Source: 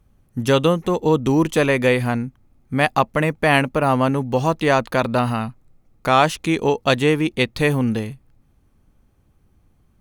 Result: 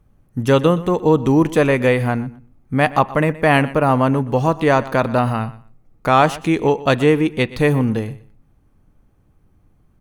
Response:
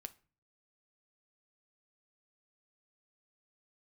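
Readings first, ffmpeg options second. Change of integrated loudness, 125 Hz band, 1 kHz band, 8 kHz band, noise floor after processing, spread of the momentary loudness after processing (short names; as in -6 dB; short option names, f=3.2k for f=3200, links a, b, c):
+2.0 dB, +3.0 dB, +2.0 dB, -3.0 dB, -58 dBFS, 10 LU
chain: -filter_complex "[0:a]aecho=1:1:122|244:0.126|0.0227,asplit=2[a][b];[1:a]atrim=start_sample=2205,lowpass=2.5k[c];[b][c]afir=irnorm=-1:irlink=0,volume=3dB[d];[a][d]amix=inputs=2:normalize=0,volume=-2.5dB"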